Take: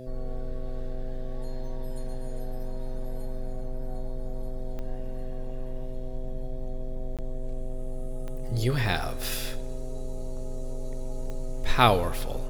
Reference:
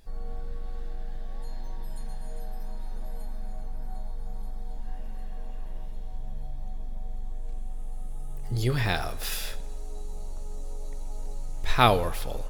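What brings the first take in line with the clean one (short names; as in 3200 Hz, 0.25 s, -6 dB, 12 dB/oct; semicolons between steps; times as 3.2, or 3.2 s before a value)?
de-click; de-hum 127.9 Hz, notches 5; interpolate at 7.17, 17 ms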